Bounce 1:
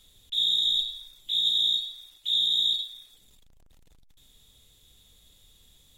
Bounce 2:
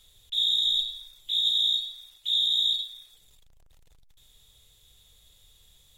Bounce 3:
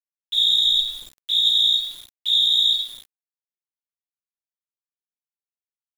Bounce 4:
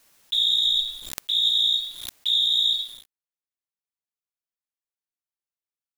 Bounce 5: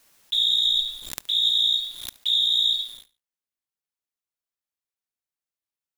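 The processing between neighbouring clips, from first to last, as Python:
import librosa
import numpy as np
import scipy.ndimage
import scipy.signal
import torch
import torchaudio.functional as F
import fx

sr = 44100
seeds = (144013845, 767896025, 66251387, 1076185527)

y1 = fx.peak_eq(x, sr, hz=250.0, db=-11.5, octaves=0.76)
y2 = np.where(np.abs(y1) >= 10.0 ** (-44.5 / 20.0), y1, 0.0)
y2 = y2 * librosa.db_to_amplitude(6.5)
y3 = fx.pre_swell(y2, sr, db_per_s=55.0)
y3 = y3 * librosa.db_to_amplitude(-3.5)
y4 = fx.echo_feedback(y3, sr, ms=72, feedback_pct=31, wet_db=-20.0)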